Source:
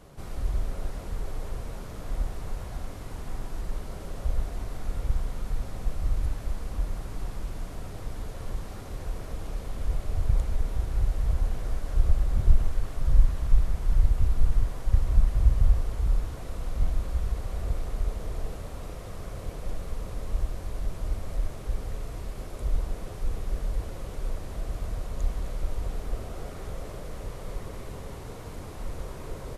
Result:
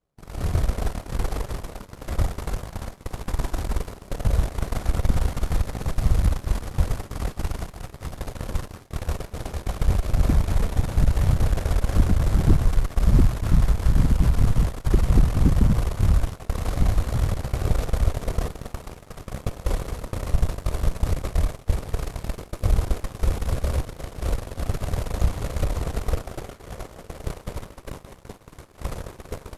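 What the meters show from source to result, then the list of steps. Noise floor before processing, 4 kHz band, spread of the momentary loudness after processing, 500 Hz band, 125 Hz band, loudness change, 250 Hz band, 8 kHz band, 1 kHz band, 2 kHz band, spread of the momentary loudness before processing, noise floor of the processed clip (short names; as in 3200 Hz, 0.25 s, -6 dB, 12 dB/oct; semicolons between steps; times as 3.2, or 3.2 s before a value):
-39 dBFS, +9.0 dB, 16 LU, +8.0 dB, +8.0 dB, +6.5 dB, +12.5 dB, n/a, +8.5 dB, +9.0 dB, 13 LU, -47 dBFS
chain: thinning echo 0.188 s, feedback 85%, high-pass 360 Hz, level -9 dB; in parallel at +2.5 dB: compressor 5:1, threshold -31 dBFS, peak gain reduction 19 dB; on the sum: added harmonics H 8 -6 dB, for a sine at -4.5 dBFS; expander -17 dBFS; gain -3.5 dB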